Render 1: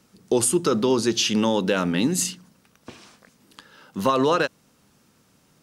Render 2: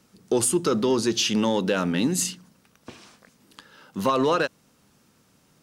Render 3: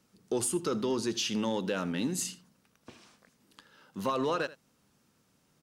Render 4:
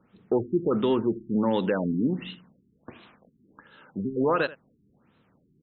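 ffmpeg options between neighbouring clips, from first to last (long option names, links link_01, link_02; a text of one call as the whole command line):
ffmpeg -i in.wav -af "acontrast=85,volume=-8dB" out.wav
ffmpeg -i in.wav -af "aecho=1:1:81:0.126,volume=-8.5dB" out.wav
ffmpeg -i in.wav -af "afftfilt=real='re*lt(b*sr/1024,390*pow(4200/390,0.5+0.5*sin(2*PI*1.4*pts/sr)))':imag='im*lt(b*sr/1024,390*pow(4200/390,0.5+0.5*sin(2*PI*1.4*pts/sr)))':win_size=1024:overlap=0.75,volume=7dB" out.wav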